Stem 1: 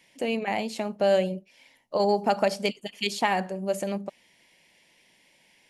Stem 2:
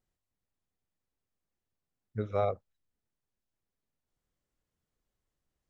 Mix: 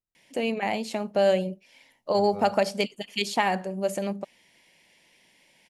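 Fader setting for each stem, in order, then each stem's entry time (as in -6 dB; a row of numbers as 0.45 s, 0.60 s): +0.5 dB, -11.5 dB; 0.15 s, 0.00 s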